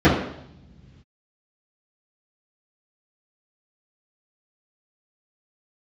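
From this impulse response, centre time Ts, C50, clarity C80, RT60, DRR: 47 ms, 3.5 dB, 7.5 dB, no single decay rate, -13.0 dB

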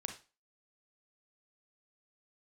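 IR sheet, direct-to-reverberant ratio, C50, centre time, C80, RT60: 4.5 dB, 8.0 dB, 15 ms, 15.0 dB, 0.30 s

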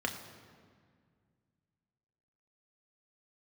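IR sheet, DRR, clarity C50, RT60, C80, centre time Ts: 2.5 dB, 8.5 dB, 1.9 s, 9.5 dB, 28 ms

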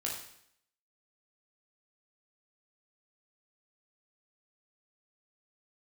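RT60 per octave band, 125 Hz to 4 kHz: 0.70 s, 0.70 s, 0.70 s, 0.70 s, 0.70 s, 0.70 s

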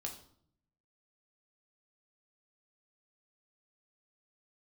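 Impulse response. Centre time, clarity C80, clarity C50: 17 ms, 13.0 dB, 9.5 dB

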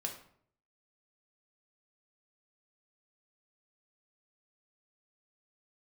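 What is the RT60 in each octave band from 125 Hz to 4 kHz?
0.80 s, 0.70 s, 0.65 s, 0.60 s, 0.50 s, 0.40 s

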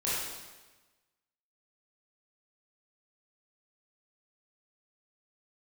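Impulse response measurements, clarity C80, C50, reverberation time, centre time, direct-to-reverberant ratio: 0.5 dB, -2.5 dB, 1.2 s, 95 ms, -9.5 dB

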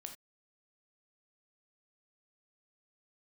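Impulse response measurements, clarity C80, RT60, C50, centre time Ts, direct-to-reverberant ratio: 14.5 dB, no single decay rate, 9.5 dB, 13 ms, 4.5 dB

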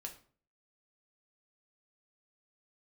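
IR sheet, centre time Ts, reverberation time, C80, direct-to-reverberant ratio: 13 ms, 0.45 s, 16.0 dB, 2.0 dB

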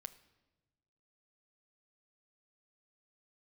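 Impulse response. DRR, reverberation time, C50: 10.0 dB, 1.1 s, 16.0 dB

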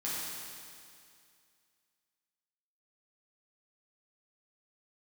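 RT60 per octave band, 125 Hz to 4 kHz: 2.3 s, 2.3 s, 2.3 s, 2.3 s, 2.3 s, 2.3 s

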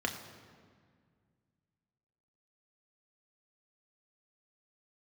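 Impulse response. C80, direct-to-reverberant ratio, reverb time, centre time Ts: 9.5 dB, 2.5 dB, 1.9 s, 28 ms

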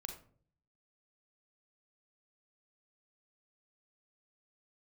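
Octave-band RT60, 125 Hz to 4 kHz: 0.85 s, 0.70 s, 0.60 s, 0.40 s, 0.35 s, 0.25 s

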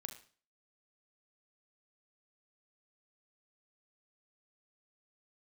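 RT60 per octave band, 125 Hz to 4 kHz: 0.45 s, 0.45 s, 0.45 s, 0.40 s, 0.40 s, 0.40 s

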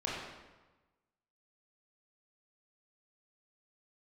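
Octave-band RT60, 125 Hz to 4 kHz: 1.4 s, 1.2 s, 1.2 s, 1.2 s, 1.1 s, 0.90 s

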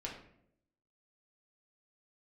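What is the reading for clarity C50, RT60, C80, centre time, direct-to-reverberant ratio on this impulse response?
6.0 dB, 0.75 s, 9.5 dB, 29 ms, -3.0 dB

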